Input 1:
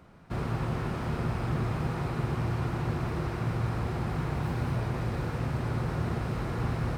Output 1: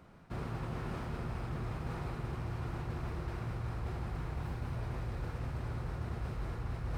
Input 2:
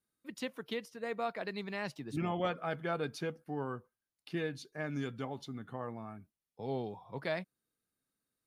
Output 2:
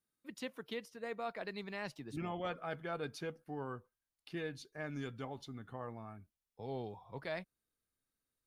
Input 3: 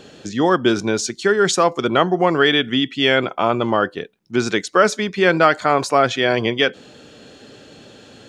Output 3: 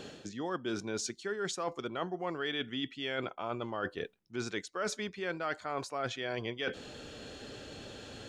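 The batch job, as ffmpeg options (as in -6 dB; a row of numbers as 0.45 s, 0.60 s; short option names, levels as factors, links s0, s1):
-af "asubboost=boost=4:cutoff=77,areverse,acompressor=threshold=0.0251:ratio=5,areverse,volume=0.708"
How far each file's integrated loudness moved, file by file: -8.5 LU, -4.5 LU, -20.0 LU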